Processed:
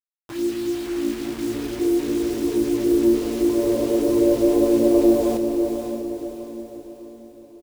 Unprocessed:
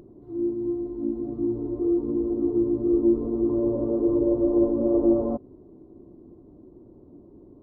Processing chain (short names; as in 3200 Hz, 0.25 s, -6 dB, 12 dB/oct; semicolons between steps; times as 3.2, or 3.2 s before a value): dynamic EQ 720 Hz, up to +7 dB, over -37 dBFS, Q 0.87; requantised 6-bit, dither none; doubler 31 ms -13 dB; diffused feedback echo 0.548 s, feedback 47%, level -6 dB